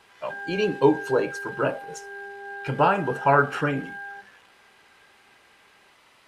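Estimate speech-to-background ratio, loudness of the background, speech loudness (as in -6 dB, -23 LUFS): 13.0 dB, -37.0 LUFS, -24.0 LUFS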